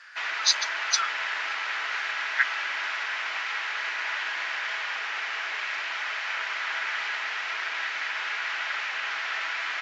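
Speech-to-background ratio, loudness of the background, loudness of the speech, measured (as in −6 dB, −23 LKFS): 1.5 dB, −29.0 LKFS, −27.5 LKFS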